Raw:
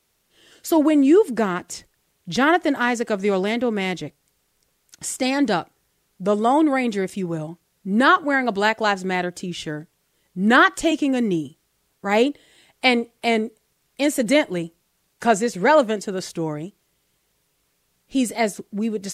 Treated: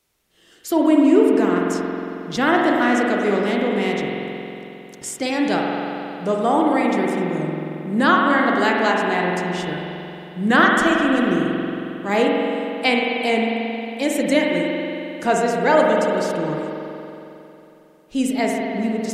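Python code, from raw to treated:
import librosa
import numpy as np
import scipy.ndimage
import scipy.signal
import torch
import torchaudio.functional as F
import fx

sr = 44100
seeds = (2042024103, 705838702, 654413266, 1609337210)

y = fx.rev_spring(x, sr, rt60_s=3.1, pass_ms=(45,), chirp_ms=80, drr_db=-1.5)
y = y * 10.0 ** (-2.0 / 20.0)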